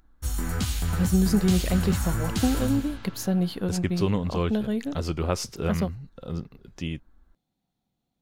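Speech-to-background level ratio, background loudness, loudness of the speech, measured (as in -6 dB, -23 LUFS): 2.0 dB, -29.0 LUFS, -27.0 LUFS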